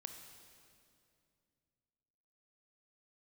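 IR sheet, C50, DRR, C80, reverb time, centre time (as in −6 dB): 6.0 dB, 5.0 dB, 7.0 dB, 2.5 s, 42 ms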